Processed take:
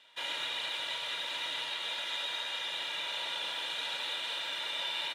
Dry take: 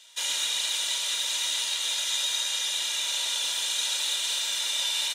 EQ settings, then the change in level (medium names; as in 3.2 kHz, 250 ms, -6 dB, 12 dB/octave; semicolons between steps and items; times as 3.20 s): distance through air 490 m; treble shelf 8.9 kHz +10 dB; hum notches 60/120 Hz; +3.0 dB